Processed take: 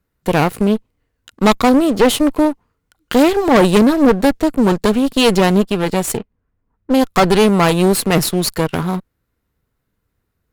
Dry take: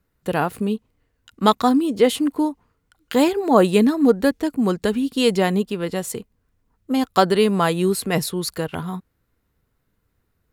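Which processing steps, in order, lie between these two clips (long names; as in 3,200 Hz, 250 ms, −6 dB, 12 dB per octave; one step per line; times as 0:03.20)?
leveller curve on the samples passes 2
0:06.17–0:07.02: low-pass that shuts in the quiet parts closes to 1,900 Hz, open at −9.5 dBFS
asymmetric clip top −24.5 dBFS
level +3 dB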